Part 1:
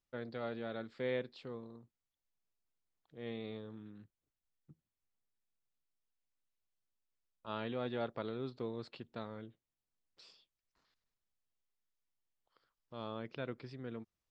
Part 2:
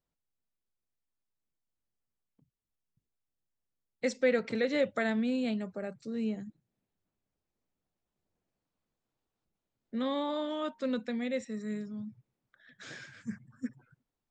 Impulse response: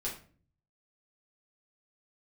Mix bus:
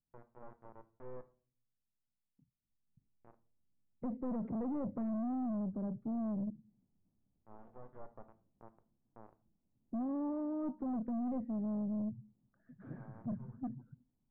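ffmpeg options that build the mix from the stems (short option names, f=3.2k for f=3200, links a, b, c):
-filter_complex "[0:a]highpass=690,afwtdn=0.002,acrusher=bits=4:dc=4:mix=0:aa=0.000001,volume=-1.5dB,asplit=2[a][b];[b]volume=-12dB[c];[1:a]lowshelf=f=330:t=q:w=1.5:g=9,volume=-1.5dB,afade=t=in:st=2.45:d=0.76:silence=0.266073,asplit=3[d][e][f];[e]volume=-23.5dB[g];[f]apad=whole_len=630850[h];[a][h]sidechaincompress=threshold=-44dB:ratio=8:attack=16:release=1260[i];[2:a]atrim=start_sample=2205[j];[c][g]amix=inputs=2:normalize=0[k];[k][j]afir=irnorm=-1:irlink=0[l];[i][d][l]amix=inputs=3:normalize=0,aeval=exprs='(tanh(39.8*val(0)+0.15)-tanh(0.15))/39.8':c=same,lowpass=f=1k:w=0.5412,lowpass=f=1k:w=1.3066,alimiter=level_in=9dB:limit=-24dB:level=0:latency=1,volume=-9dB"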